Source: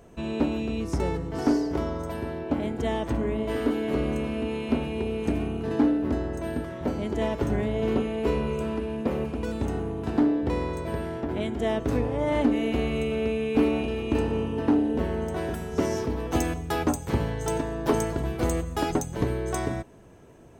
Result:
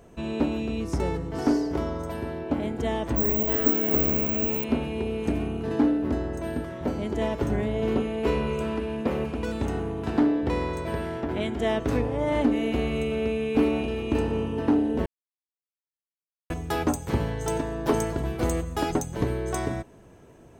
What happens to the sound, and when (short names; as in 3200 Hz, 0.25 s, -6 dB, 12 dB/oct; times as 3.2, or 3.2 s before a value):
3.16–4.64 careless resampling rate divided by 2×, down none, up zero stuff
8.23–12.02 bell 2300 Hz +3.5 dB 2.9 oct
15.06–16.5 mute